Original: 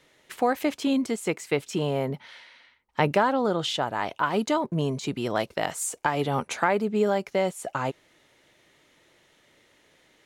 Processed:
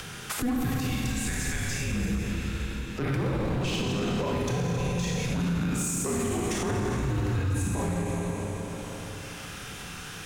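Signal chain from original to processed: chunks repeated in reverse 347 ms, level -12.5 dB; resonant high-pass 640 Hz, resonance Q 3.7; treble shelf 3.8 kHz +10 dB; Schroeder reverb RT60 2.4 s, combs from 26 ms, DRR -4 dB; upward compressor, threshold -16 dBFS; peak limiter -12 dBFS, peak gain reduction 11 dB; overload inside the chain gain 16 dB; frequency shift -480 Hz; trim -7 dB

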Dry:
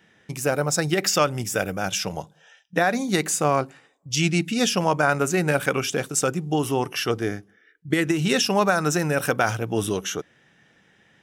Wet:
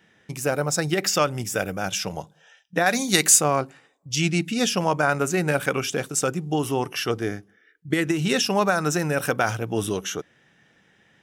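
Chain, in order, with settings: 2.86–3.41 s: treble shelf 2.1 kHz +12 dB; trim -1 dB

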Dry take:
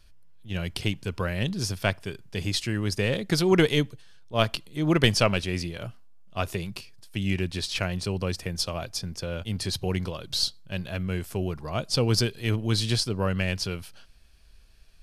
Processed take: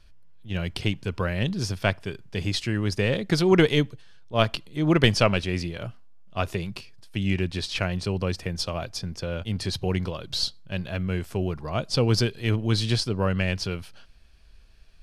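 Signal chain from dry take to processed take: treble shelf 7.5 kHz -11.5 dB; trim +2 dB

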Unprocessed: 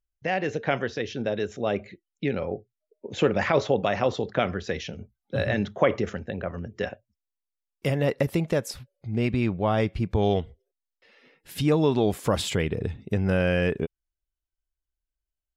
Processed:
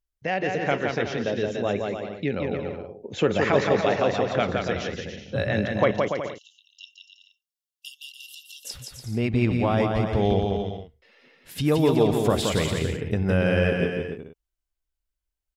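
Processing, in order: 5.91–8.65 s: brick-wall FIR high-pass 2.7 kHz; bouncing-ball echo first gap 170 ms, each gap 0.7×, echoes 5

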